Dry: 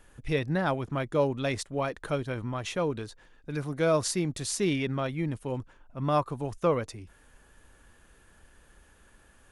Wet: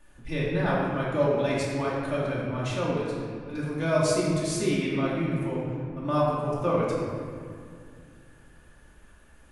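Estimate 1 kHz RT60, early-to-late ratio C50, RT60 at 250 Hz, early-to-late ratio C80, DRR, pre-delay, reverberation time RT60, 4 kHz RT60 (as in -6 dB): 2.1 s, -1.5 dB, 3.2 s, 0.5 dB, -7.5 dB, 3 ms, 2.2 s, 1.3 s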